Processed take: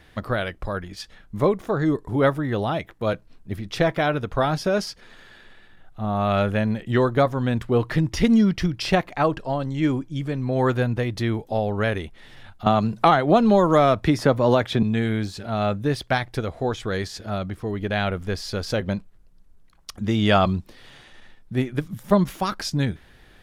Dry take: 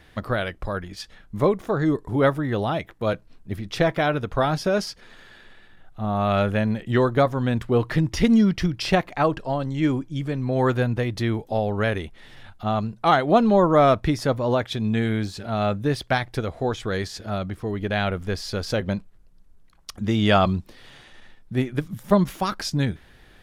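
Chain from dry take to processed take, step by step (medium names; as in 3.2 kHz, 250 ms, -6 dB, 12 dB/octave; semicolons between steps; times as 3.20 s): 12.66–14.83 s: three bands compressed up and down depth 100%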